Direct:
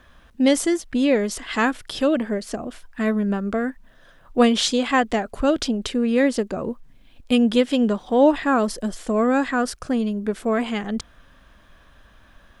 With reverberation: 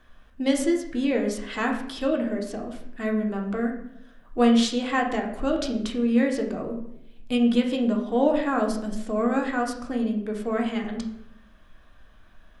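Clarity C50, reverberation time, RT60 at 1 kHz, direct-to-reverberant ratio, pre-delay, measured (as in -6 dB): 7.0 dB, 0.75 s, 0.70 s, 1.0 dB, 3 ms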